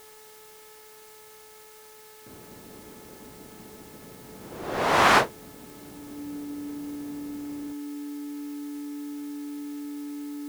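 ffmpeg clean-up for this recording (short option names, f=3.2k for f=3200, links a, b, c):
-af "adeclick=t=4,bandreject=f=431.4:t=h:w=4,bandreject=f=862.8:t=h:w=4,bandreject=f=1.2942k:t=h:w=4,bandreject=f=1.7256k:t=h:w=4,bandreject=f=2.157k:t=h:w=4,bandreject=f=290:w=30,afwtdn=0.0025"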